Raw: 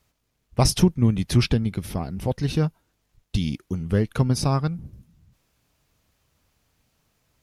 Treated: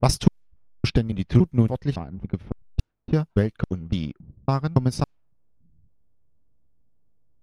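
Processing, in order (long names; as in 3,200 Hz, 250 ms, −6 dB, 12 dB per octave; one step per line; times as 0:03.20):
slices reordered back to front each 280 ms, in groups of 3
in parallel at −5.5 dB: slack as between gear wheels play −26 dBFS
on the sum: transient designer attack +6 dB, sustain −3 dB
low-pass that shuts in the quiet parts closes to 500 Hz, open at −11 dBFS
level −6.5 dB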